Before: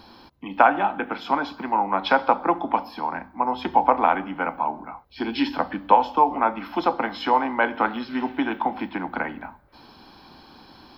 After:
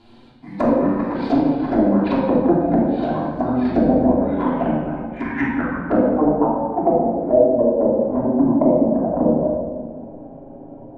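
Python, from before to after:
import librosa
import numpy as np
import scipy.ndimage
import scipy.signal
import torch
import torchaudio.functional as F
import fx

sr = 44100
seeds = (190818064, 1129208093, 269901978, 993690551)

y = fx.envelope_flatten(x, sr, power=0.6)
y = fx.doubler(y, sr, ms=39.0, db=-6.0)
y = fx.formant_shift(y, sr, semitones=-6)
y = fx.filter_sweep_lowpass(y, sr, from_hz=4400.0, to_hz=600.0, start_s=4.01, end_s=7.11, q=7.7)
y = fx.rider(y, sr, range_db=5, speed_s=0.5)
y = fx.env_flanger(y, sr, rest_ms=9.0, full_db=-11.5)
y = fx.peak_eq(y, sr, hz=3200.0, db=-15.0, octaves=2.6)
y = fx.env_lowpass_down(y, sr, base_hz=640.0, full_db=-17.5)
y = fx.room_shoebox(y, sr, seeds[0], volume_m3=1400.0, walls='mixed', distance_m=3.1)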